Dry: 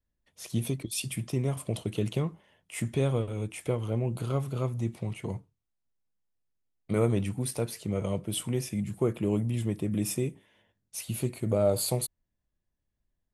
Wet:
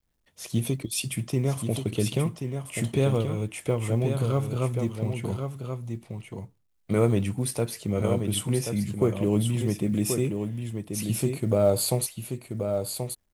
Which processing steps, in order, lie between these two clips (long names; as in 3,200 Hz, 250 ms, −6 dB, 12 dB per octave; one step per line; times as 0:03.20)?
log-companded quantiser 8 bits
on a send: single-tap delay 1,081 ms −6.5 dB
on the sum: level +3.5 dB